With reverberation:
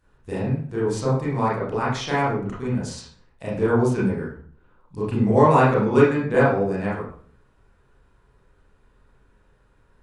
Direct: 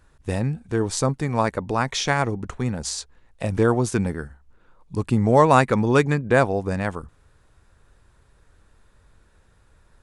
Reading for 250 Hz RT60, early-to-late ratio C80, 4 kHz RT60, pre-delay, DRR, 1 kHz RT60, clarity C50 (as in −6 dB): 0.60 s, 7.0 dB, 0.40 s, 27 ms, −9.0 dB, 0.45 s, 2.0 dB